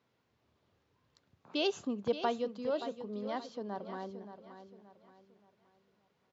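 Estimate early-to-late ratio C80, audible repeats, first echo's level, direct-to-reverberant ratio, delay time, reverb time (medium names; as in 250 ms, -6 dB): no reverb, 3, -11.0 dB, no reverb, 575 ms, no reverb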